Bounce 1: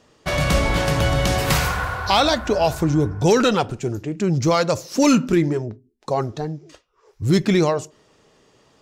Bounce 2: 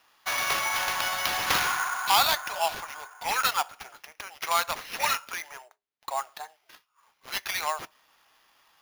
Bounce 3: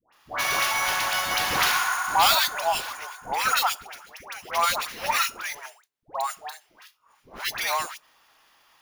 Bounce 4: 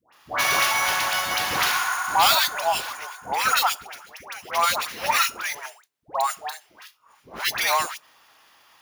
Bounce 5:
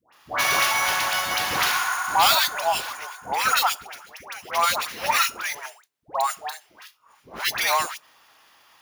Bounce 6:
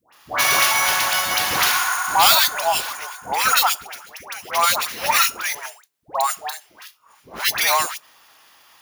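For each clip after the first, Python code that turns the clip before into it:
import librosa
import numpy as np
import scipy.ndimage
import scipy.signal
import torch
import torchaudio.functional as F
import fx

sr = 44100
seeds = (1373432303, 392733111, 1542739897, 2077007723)

y1 = scipy.signal.sosfilt(scipy.signal.butter(6, 790.0, 'highpass', fs=sr, output='sos'), x)
y1 = fx.sample_hold(y1, sr, seeds[0], rate_hz=8100.0, jitter_pct=0)
y1 = y1 * librosa.db_to_amplitude(-2.0)
y2 = fx.dispersion(y1, sr, late='highs', ms=127.0, hz=970.0)
y2 = y2 * librosa.db_to_amplitude(3.0)
y3 = scipy.signal.sosfilt(scipy.signal.butter(2, 59.0, 'highpass', fs=sr, output='sos'), y2)
y3 = fx.rider(y3, sr, range_db=5, speed_s=2.0)
y3 = y3 * librosa.db_to_amplitude(2.0)
y4 = y3
y5 = fx.high_shelf(y4, sr, hz=5500.0, db=6.0)
y5 = y5 * librosa.db_to_amplitude(2.5)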